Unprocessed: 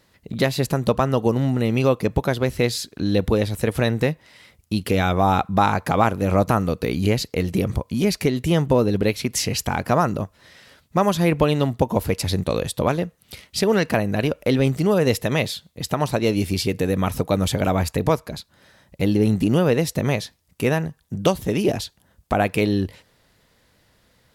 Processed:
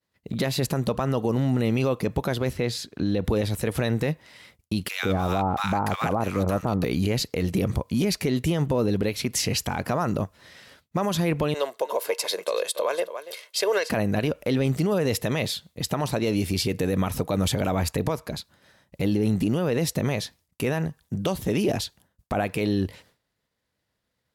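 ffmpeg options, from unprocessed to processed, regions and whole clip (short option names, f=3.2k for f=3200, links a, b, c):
-filter_complex "[0:a]asettb=1/sr,asplit=3[a][b][c];[a]atrim=end=2.534[d];[b]atrim=start=2.53:end=3.25,asetpts=PTS-STARTPTS,afade=t=in:d=0.004:c=qsin,afade=t=out:st=0.716:d=0.004:c=qsin,highpass=43,highshelf=f=4.8k:g=-9.5[e];[c]atrim=start=3.246[f];[d][e]acrossfade=d=0.004:c1=hsin:c2=qsin[g];[g][f]acrossfade=d=0.004:c1=qsin:c2=hsin,asettb=1/sr,asplit=3[h][i][j];[h]atrim=end=4.884[k];[i]atrim=start=4.88:end=6.84,asetpts=PTS-STARTPTS,afade=t=in:d=0.004:c=qsin,afade=t=out:st=1.956:d=0.004:c=qsin,aeval=exprs='sgn(val(0))*max(abs(val(0))-0.00794,0)':c=same,acrossover=split=1200[l][m];[l]adelay=150[n];[n][m]amix=inputs=2:normalize=0,atrim=end_sample=86436[o];[j]atrim=start=6.836[p];[k][o]acrossfade=d=0.004:c1=hsin:c2=qsin[q];[q][p]acrossfade=d=0.004:c1=qsin:c2=hsin,asettb=1/sr,asplit=3[r][s][t];[r]atrim=end=11.544[u];[s]atrim=start=11.54:end=13.9,asetpts=PTS-STARTPTS,afade=t=in:d=0.004:c=qsin,afade=t=out:st=2.356:d=0.004:c=qsin,highpass=f=430:w=0.5412,highpass=f=430:w=1.3066,aecho=1:1:1.9:0.47,atrim=end_sample=104076,aecho=1:1:284:0.178,atrim=end_sample=104076[v];[t]atrim=start=13.896[w];[u][v]acrossfade=d=0.004:c1=hsin:c2=qsin[x];[x][w]acrossfade=d=0.004:c1=qsin:c2=hsin,highpass=f=48:p=1,agate=range=-33dB:threshold=-48dB:ratio=3:detection=peak,alimiter=limit=-15dB:level=0:latency=1:release=37"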